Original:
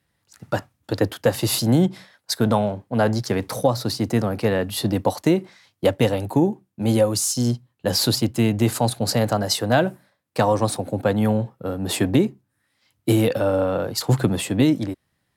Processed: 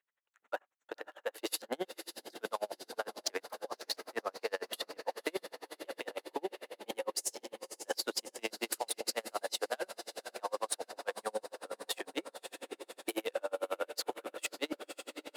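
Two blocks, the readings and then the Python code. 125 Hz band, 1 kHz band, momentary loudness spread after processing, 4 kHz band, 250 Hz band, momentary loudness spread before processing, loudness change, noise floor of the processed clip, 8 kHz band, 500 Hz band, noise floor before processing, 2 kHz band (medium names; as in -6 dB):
under -40 dB, -14.5 dB, 9 LU, -13.0 dB, -26.5 dB, 7 LU, -18.0 dB, -78 dBFS, -12.5 dB, -17.0 dB, -73 dBFS, -11.0 dB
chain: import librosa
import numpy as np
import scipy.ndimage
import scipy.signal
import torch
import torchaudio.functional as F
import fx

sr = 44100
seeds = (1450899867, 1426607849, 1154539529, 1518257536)

p1 = fx.wiener(x, sr, points=9)
p2 = scipy.signal.sosfilt(scipy.signal.butter(4, 490.0, 'highpass', fs=sr, output='sos'), p1)
p3 = fx.peak_eq(p2, sr, hz=630.0, db=-6.0, octaves=1.5)
p4 = fx.level_steps(p3, sr, step_db=18)
p5 = np.clip(p4, -10.0 ** (-27.5 / 20.0), 10.0 ** (-27.5 / 20.0))
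p6 = p5 + fx.echo_diffused(p5, sr, ms=562, feedback_pct=69, wet_db=-9.5, dry=0)
p7 = p6 * 10.0 ** (-38 * (0.5 - 0.5 * np.cos(2.0 * np.pi * 11.0 * np.arange(len(p6)) / sr)) / 20.0)
y = p7 * 10.0 ** (5.5 / 20.0)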